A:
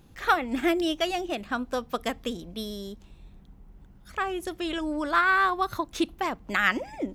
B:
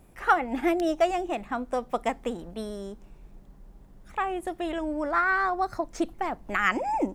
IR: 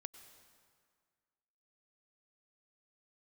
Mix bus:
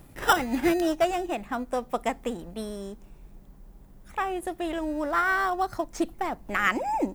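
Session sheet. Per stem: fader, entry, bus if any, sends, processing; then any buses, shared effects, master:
+2.5 dB, 0.00 s, no send, decimation without filtering 20×; automatic ducking −21 dB, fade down 1.55 s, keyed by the second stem
0.0 dB, 0.00 s, no send, high-shelf EQ 11,000 Hz +12 dB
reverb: not used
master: no processing

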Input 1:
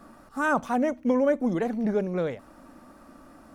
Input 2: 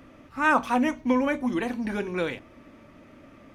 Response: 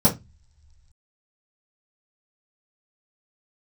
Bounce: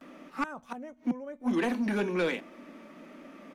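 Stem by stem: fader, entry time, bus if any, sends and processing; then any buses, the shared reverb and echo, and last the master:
−18.5 dB, 0.00 s, no send, no processing
+2.0 dB, 11 ms, no send, gate with flip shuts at −17 dBFS, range −38 dB; Butterworth high-pass 170 Hz 72 dB per octave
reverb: not used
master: soft clipping −21 dBFS, distortion −15 dB

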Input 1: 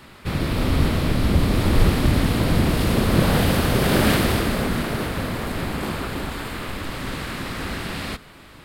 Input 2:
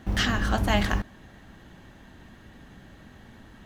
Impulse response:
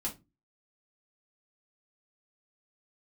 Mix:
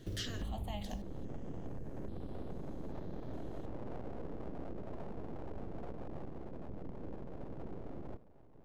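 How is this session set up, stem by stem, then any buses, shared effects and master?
−10.0 dB, 0.00 s, no send, Butterworth low-pass 560 Hz 96 dB per octave; downward compressor, threshold −22 dBFS, peak gain reduction 11.5 dB; full-wave rectification
−2.0 dB, 0.00 s, no send, flat-topped bell 1,600 Hz −8.5 dB; step-sequenced phaser 2.4 Hz 220–6,500 Hz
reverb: not used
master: downward compressor 6 to 1, threshold −37 dBFS, peak gain reduction 14.5 dB

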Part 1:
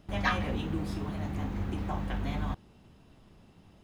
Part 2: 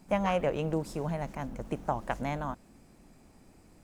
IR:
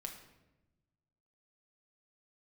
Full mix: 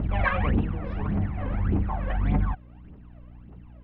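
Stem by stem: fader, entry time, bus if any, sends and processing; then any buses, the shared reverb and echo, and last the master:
−1.0 dB, 0.00 s, no send, phase shifter 1.7 Hz, delay 2 ms, feedback 76%; mains hum 60 Hz, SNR 20 dB
−15.0 dB, 0.00 s, no send, no processing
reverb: not used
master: low-pass filter 2,400 Hz 24 dB per octave; background raised ahead of every attack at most 23 dB per second

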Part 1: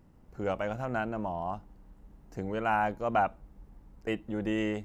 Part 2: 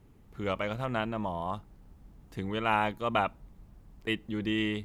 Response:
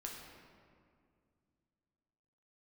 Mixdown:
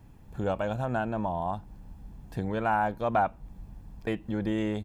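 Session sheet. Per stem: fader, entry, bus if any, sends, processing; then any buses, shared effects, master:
−0.5 dB, 0.00 s, no send, no processing
+2.5 dB, 0.00 s, no send, comb filter 1.2 ms, depth 55%; downward compressor, threshold −36 dBFS, peak gain reduction 15 dB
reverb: not used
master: no processing

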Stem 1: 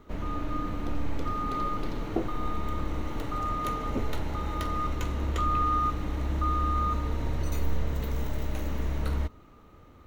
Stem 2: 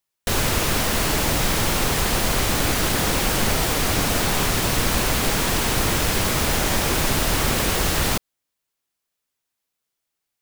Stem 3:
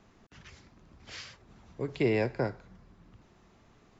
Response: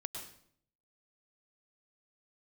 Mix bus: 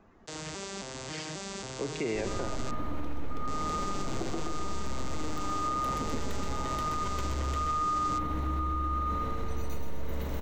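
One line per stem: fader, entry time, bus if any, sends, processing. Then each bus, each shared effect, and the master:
+1.0 dB, 2.05 s, bus A, no send, echo send −4 dB, no processing
−13.0 dB, 0.00 s, muted 0:02.71–0:03.47, no bus, no send, no echo send, vocoder with an arpeggio as carrier minor triad, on C3, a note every 270 ms; bass and treble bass −10 dB, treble +14 dB
+0.5 dB, 0.00 s, bus A, send −7.5 dB, no echo send, parametric band 130 Hz −7.5 dB
bus A: 0.0 dB, spectral peaks only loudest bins 64; downward compressor, threshold −30 dBFS, peak gain reduction 11 dB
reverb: on, RT60 0.60 s, pre-delay 97 ms
echo: repeating echo 127 ms, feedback 55%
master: brickwall limiter −23 dBFS, peak gain reduction 7.5 dB

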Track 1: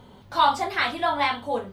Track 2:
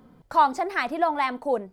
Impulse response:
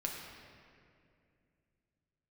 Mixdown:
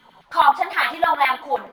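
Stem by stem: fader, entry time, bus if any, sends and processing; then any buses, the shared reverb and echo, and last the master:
+1.5 dB, 0.00 s, no send, auto-filter high-pass saw down 9.6 Hz 590–2,100 Hz
−12.0 dB, 1 ms, polarity flipped, send −3.5 dB, no processing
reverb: on, RT60 2.4 s, pre-delay 6 ms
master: treble cut that deepens with the level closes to 1,900 Hz, closed at −8.5 dBFS; linearly interpolated sample-rate reduction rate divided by 3×

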